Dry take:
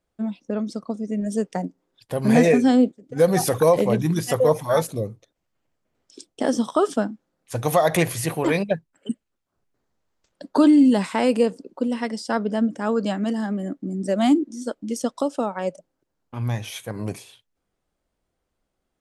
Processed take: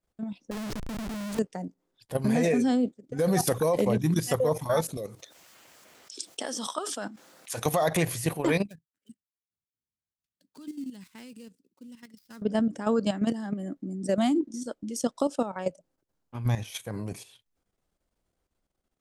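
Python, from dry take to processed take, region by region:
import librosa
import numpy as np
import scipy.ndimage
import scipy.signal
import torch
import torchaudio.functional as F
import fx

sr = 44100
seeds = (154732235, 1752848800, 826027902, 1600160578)

y = fx.chain(x, sr, fx.hum_notches(base_hz=60, count=9),
    fx.schmitt(flips_db=-36.0),
    fx.doppler_dist(depth_ms=0.12), at=(0.51, 1.39))
y = fx.chain(y, sr, fx.highpass(hz=1300.0, slope=6),
    fx.env_flatten(amount_pct=50), at=(4.97, 7.66))
y = fx.chain(y, sr, fx.dead_time(dead_ms=0.064),
    fx.highpass(hz=76.0, slope=12),
    fx.tone_stack(knobs='6-0-2'), at=(8.67, 12.42))
y = fx.bass_treble(y, sr, bass_db=2, treble_db=3)
y = fx.level_steps(y, sr, step_db=11)
y = y * 10.0 ** (-1.0 / 20.0)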